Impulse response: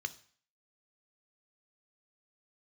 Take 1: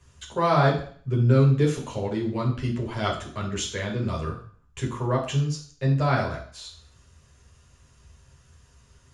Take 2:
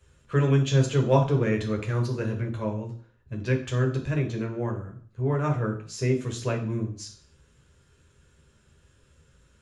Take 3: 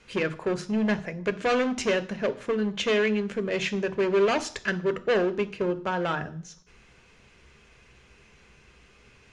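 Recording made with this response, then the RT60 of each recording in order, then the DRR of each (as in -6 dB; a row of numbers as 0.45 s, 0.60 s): 3; 0.50 s, 0.50 s, 0.50 s; -3.5 dB, 1.0 dB, 11.0 dB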